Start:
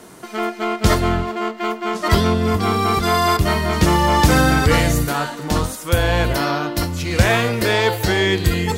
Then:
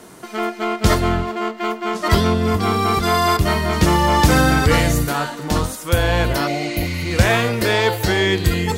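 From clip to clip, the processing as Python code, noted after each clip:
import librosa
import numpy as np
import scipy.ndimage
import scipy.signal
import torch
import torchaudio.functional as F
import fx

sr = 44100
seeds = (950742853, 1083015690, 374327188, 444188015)

y = fx.spec_repair(x, sr, seeds[0], start_s=6.49, length_s=0.53, low_hz=850.0, high_hz=10000.0, source='after')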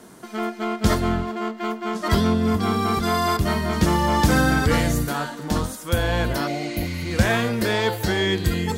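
y = fx.peak_eq(x, sr, hz=2600.0, db=-2.5, octaves=0.77)
y = fx.small_body(y, sr, hz=(220.0, 1600.0, 3300.0), ring_ms=45, db=6)
y = y * librosa.db_to_amplitude(-5.0)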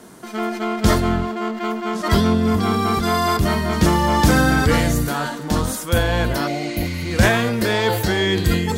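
y = fx.sustainer(x, sr, db_per_s=54.0)
y = y * librosa.db_to_amplitude(2.5)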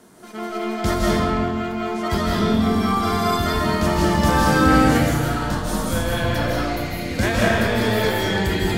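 y = fx.rev_freeverb(x, sr, rt60_s=1.7, hf_ratio=0.7, predelay_ms=120, drr_db=-5.0)
y = y * librosa.db_to_amplitude(-7.0)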